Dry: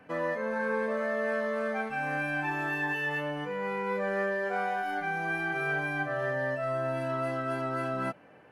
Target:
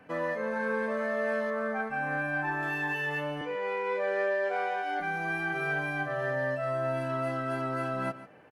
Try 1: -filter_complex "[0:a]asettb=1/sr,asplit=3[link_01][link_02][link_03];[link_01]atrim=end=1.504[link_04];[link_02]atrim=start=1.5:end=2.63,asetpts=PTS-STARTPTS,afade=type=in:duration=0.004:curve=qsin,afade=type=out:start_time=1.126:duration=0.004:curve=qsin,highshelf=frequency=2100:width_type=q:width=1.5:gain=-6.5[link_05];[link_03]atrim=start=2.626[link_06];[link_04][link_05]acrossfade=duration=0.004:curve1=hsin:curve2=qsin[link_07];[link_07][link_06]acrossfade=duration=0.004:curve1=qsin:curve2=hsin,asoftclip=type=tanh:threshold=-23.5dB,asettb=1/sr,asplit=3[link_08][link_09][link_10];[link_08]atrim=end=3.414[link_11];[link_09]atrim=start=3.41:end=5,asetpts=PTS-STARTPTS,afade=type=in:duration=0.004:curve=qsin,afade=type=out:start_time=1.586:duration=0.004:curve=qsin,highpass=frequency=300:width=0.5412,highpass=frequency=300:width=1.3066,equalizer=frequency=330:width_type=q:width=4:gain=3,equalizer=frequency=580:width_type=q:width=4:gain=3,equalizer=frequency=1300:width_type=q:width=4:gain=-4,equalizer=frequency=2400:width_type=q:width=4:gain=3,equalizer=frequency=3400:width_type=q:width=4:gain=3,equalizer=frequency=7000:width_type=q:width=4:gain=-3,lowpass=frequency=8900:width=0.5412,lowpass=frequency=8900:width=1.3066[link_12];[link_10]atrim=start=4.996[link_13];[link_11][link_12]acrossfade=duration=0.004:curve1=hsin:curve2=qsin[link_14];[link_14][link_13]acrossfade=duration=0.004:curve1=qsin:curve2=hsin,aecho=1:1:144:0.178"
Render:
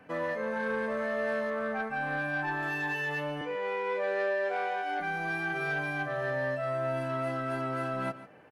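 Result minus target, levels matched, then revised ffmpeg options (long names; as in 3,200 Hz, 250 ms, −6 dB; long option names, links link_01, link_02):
soft clipping: distortion +14 dB
-filter_complex "[0:a]asettb=1/sr,asplit=3[link_01][link_02][link_03];[link_01]atrim=end=1.504[link_04];[link_02]atrim=start=1.5:end=2.63,asetpts=PTS-STARTPTS,afade=type=in:duration=0.004:curve=qsin,afade=type=out:start_time=1.126:duration=0.004:curve=qsin,highshelf=frequency=2100:width_type=q:width=1.5:gain=-6.5[link_05];[link_03]atrim=start=2.626[link_06];[link_04][link_05]acrossfade=duration=0.004:curve1=hsin:curve2=qsin[link_07];[link_07][link_06]acrossfade=duration=0.004:curve1=qsin:curve2=hsin,asoftclip=type=tanh:threshold=-15.5dB,asettb=1/sr,asplit=3[link_08][link_09][link_10];[link_08]atrim=end=3.414[link_11];[link_09]atrim=start=3.41:end=5,asetpts=PTS-STARTPTS,afade=type=in:duration=0.004:curve=qsin,afade=type=out:start_time=1.586:duration=0.004:curve=qsin,highpass=frequency=300:width=0.5412,highpass=frequency=300:width=1.3066,equalizer=frequency=330:width_type=q:width=4:gain=3,equalizer=frequency=580:width_type=q:width=4:gain=3,equalizer=frequency=1300:width_type=q:width=4:gain=-4,equalizer=frequency=2400:width_type=q:width=4:gain=3,equalizer=frequency=3400:width_type=q:width=4:gain=3,equalizer=frequency=7000:width_type=q:width=4:gain=-3,lowpass=frequency=8900:width=0.5412,lowpass=frequency=8900:width=1.3066[link_12];[link_10]atrim=start=4.996[link_13];[link_11][link_12]acrossfade=duration=0.004:curve1=hsin:curve2=qsin[link_14];[link_14][link_13]acrossfade=duration=0.004:curve1=qsin:curve2=hsin,aecho=1:1:144:0.178"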